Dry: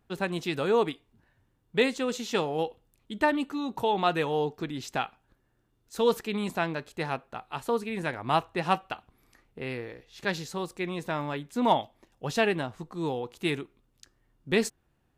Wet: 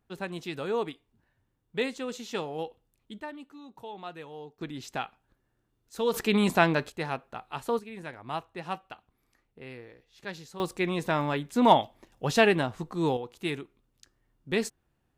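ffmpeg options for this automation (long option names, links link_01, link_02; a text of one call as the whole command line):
ffmpeg -i in.wav -af "asetnsamples=nb_out_samples=441:pad=0,asendcmd='3.2 volume volume -15.5dB;4.61 volume volume -3.5dB;6.14 volume volume 7dB;6.9 volume volume -1dB;7.79 volume volume -9dB;10.6 volume volume 4dB;13.17 volume volume -3dB',volume=-5.5dB" out.wav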